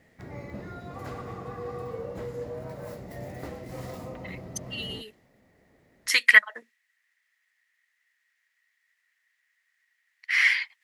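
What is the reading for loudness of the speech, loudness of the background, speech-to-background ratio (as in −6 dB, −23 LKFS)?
−21.0 LKFS, −39.0 LKFS, 18.0 dB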